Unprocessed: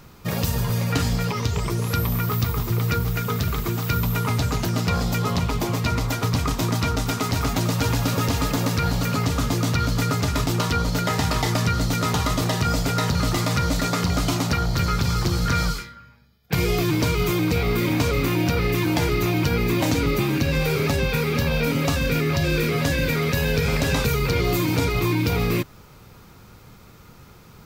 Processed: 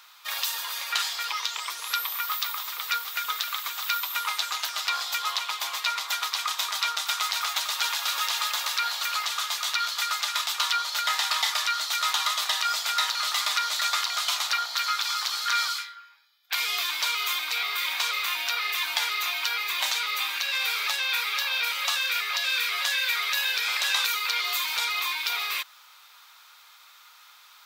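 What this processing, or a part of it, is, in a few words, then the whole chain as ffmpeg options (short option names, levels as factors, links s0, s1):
headphones lying on a table: -filter_complex "[0:a]highpass=f=1000:w=0.5412,highpass=f=1000:w=1.3066,equalizer=f=3600:t=o:w=0.54:g=8,asplit=3[s0][s1][s2];[s0]afade=t=out:st=9.29:d=0.02[s3];[s1]asubboost=boost=9:cutoff=84,afade=t=in:st=9.29:d=0.02,afade=t=out:st=10.87:d=0.02[s4];[s2]afade=t=in:st=10.87:d=0.02[s5];[s3][s4][s5]amix=inputs=3:normalize=0"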